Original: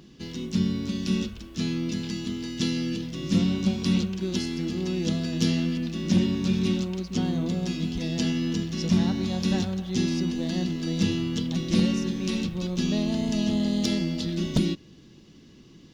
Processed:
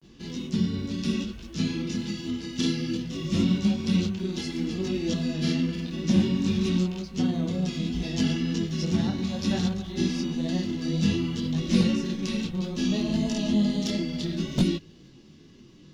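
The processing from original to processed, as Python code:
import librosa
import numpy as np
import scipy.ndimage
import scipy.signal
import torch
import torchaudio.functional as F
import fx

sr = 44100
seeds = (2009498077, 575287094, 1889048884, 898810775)

y = fx.granulator(x, sr, seeds[0], grain_ms=100.0, per_s=20.0, spray_ms=29.0, spread_st=0)
y = fx.detune_double(y, sr, cents=21)
y = y * librosa.db_to_amplitude(4.5)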